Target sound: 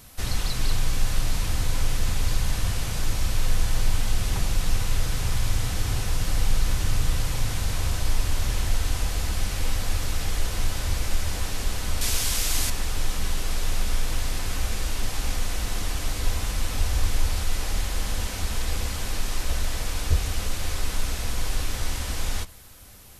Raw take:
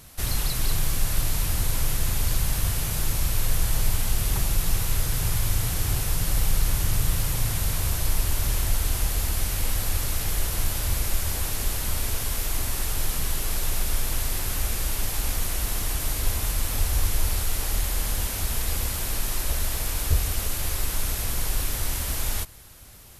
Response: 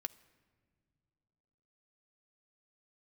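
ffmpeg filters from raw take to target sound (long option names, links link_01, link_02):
-filter_complex "[0:a]acrossover=split=8200[link_01][link_02];[link_02]acompressor=threshold=-48dB:ratio=4:attack=1:release=60[link_03];[link_01][link_03]amix=inputs=2:normalize=0,asettb=1/sr,asplit=3[link_04][link_05][link_06];[link_04]atrim=end=12.014[link_07];[link_05]atrim=start=12.01:end=12.7,asetpts=PTS-STARTPTS,afade=type=in:duration=0.004:curve=qsin,afade=type=out:start_time=0.686:duration=0.004:curve=qsin,highshelf=frequency=2700:gain=11.5[link_08];[link_06]atrim=start=12.696[link_09];[link_07][link_08]acrossfade=duration=0.004:curve1=hsin:curve2=qsin[link_10];[link_10][link_09]acrossfade=duration=0.004:curve1=qsin:curve2=hsin[link_11];[1:a]atrim=start_sample=2205,atrim=end_sample=3528[link_12];[link_11][link_12]afir=irnorm=-1:irlink=0,volume=3dB"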